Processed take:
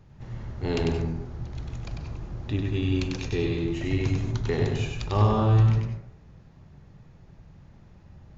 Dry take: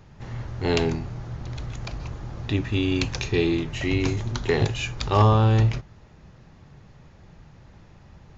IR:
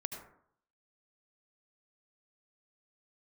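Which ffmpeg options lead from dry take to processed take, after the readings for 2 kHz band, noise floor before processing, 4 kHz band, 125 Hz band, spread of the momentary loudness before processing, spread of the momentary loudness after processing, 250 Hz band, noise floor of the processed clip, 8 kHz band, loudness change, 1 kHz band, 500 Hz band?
−7.0 dB, −51 dBFS, −7.0 dB, −1.0 dB, 17 LU, 16 LU, −2.5 dB, −52 dBFS, can't be measured, −2.5 dB, −5.5 dB, −3.5 dB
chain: -filter_complex "[0:a]lowshelf=frequency=410:gain=6.5,asplit=2[link_01][link_02];[1:a]atrim=start_sample=2205,adelay=97[link_03];[link_02][link_03]afir=irnorm=-1:irlink=0,volume=-1.5dB[link_04];[link_01][link_04]amix=inputs=2:normalize=0,volume=-9dB"

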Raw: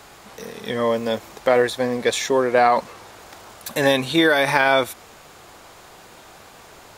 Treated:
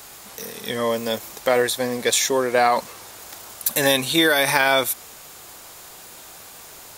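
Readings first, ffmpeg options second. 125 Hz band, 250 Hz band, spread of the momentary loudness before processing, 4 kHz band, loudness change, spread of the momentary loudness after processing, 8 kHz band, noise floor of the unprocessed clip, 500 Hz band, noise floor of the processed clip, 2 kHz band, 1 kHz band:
−2.5 dB, −2.5 dB, 13 LU, +3.5 dB, −0.5 dB, 22 LU, +9.0 dB, −46 dBFS, −2.0 dB, −43 dBFS, 0.0 dB, −2.0 dB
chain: -af "aemphasis=mode=production:type=75kf,volume=-2.5dB"

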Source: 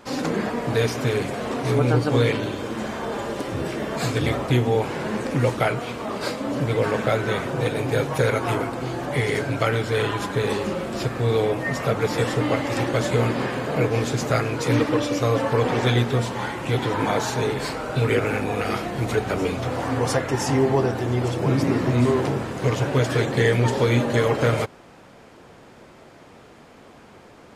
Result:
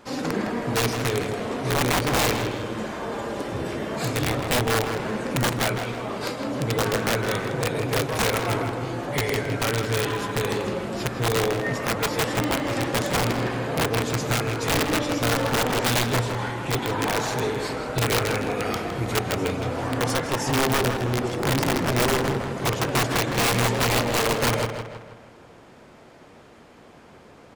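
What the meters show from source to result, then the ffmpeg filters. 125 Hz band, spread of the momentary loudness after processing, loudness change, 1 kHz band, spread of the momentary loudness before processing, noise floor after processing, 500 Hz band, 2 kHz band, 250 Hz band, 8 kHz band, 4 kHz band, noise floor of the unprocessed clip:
−4.0 dB, 7 LU, −1.5 dB, +0.5 dB, 7 LU, −49 dBFS, −3.0 dB, +1.0 dB, −2.5 dB, +6.0 dB, +4.0 dB, −48 dBFS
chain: -filter_complex "[0:a]aeval=exprs='(mod(4.73*val(0)+1,2)-1)/4.73':channel_layout=same,asplit=2[link_01][link_02];[link_02]adelay=160,lowpass=frequency=4400:poles=1,volume=-7dB,asplit=2[link_03][link_04];[link_04]adelay=160,lowpass=frequency=4400:poles=1,volume=0.49,asplit=2[link_05][link_06];[link_06]adelay=160,lowpass=frequency=4400:poles=1,volume=0.49,asplit=2[link_07][link_08];[link_08]adelay=160,lowpass=frequency=4400:poles=1,volume=0.49,asplit=2[link_09][link_10];[link_10]adelay=160,lowpass=frequency=4400:poles=1,volume=0.49,asplit=2[link_11][link_12];[link_12]adelay=160,lowpass=frequency=4400:poles=1,volume=0.49[link_13];[link_01][link_03][link_05][link_07][link_09][link_11][link_13]amix=inputs=7:normalize=0,volume=-2.5dB"

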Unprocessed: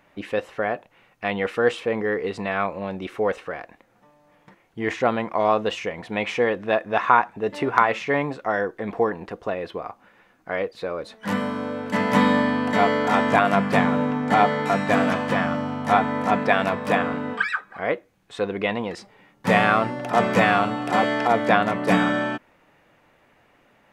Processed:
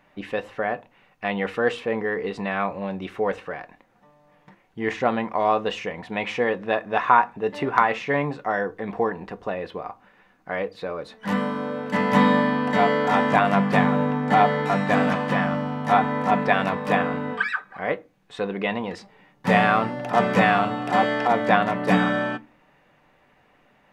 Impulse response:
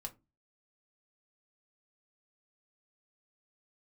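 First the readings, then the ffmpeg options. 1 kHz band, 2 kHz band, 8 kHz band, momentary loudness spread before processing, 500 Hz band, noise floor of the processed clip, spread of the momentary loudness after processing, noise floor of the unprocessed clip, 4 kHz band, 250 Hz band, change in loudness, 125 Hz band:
+0.5 dB, −0.5 dB, can't be measured, 12 LU, −1.0 dB, −60 dBFS, 13 LU, −60 dBFS, −1.5 dB, 0.0 dB, −0.5 dB, +1.5 dB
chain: -filter_complex "[0:a]asplit=2[link_01][link_02];[1:a]atrim=start_sample=2205,asetrate=41454,aresample=44100,lowpass=6300[link_03];[link_02][link_03]afir=irnorm=-1:irlink=0,volume=-1dB[link_04];[link_01][link_04]amix=inputs=2:normalize=0,volume=-4.5dB"

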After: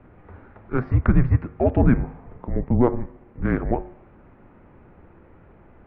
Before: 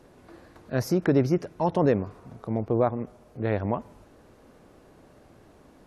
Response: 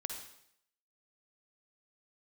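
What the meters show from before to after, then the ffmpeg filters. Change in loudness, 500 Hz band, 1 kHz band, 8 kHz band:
+4.0 dB, −0.5 dB, +0.5 dB, can't be measured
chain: -af "bandreject=frequency=101.8:width_type=h:width=4,bandreject=frequency=203.6:width_type=h:width=4,bandreject=frequency=305.4:width_type=h:width=4,bandreject=frequency=407.2:width_type=h:width=4,bandreject=frequency=509:width_type=h:width=4,bandreject=frequency=610.8:width_type=h:width=4,bandreject=frequency=712.6:width_type=h:width=4,bandreject=frequency=814.4:width_type=h:width=4,bandreject=frequency=916.2:width_type=h:width=4,bandreject=frequency=1018:width_type=h:width=4,bandreject=frequency=1119.8:width_type=h:width=4,bandreject=frequency=1221.6:width_type=h:width=4,bandreject=frequency=1323.4:width_type=h:width=4,bandreject=frequency=1425.2:width_type=h:width=4,bandreject=frequency=1527:width_type=h:width=4,bandreject=frequency=1628.8:width_type=h:width=4,bandreject=frequency=1730.6:width_type=h:width=4,bandreject=frequency=1832.4:width_type=h:width=4,bandreject=frequency=1934.2:width_type=h:width=4,bandreject=frequency=2036:width_type=h:width=4,bandreject=frequency=2137.8:width_type=h:width=4,bandreject=frequency=2239.6:width_type=h:width=4,bandreject=frequency=2341.4:width_type=h:width=4,bandreject=frequency=2443.2:width_type=h:width=4,bandreject=frequency=2545:width_type=h:width=4,bandreject=frequency=2646.8:width_type=h:width=4,bandreject=frequency=2748.6:width_type=h:width=4,highpass=frequency=160:width_type=q:width=0.5412,highpass=frequency=160:width_type=q:width=1.307,lowpass=frequency=2600:width_type=q:width=0.5176,lowpass=frequency=2600:width_type=q:width=0.7071,lowpass=frequency=2600:width_type=q:width=1.932,afreqshift=-250,aeval=exprs='0.282*(cos(1*acos(clip(val(0)/0.282,-1,1)))-cos(1*PI/2))+0.00282*(cos(7*acos(clip(val(0)/0.282,-1,1)))-cos(7*PI/2))':channel_layout=same,volume=6.5dB"

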